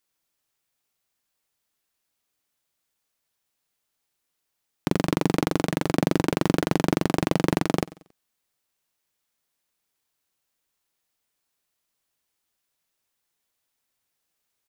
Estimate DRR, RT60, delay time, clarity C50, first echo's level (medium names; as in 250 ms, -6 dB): no reverb, no reverb, 92 ms, no reverb, -20.0 dB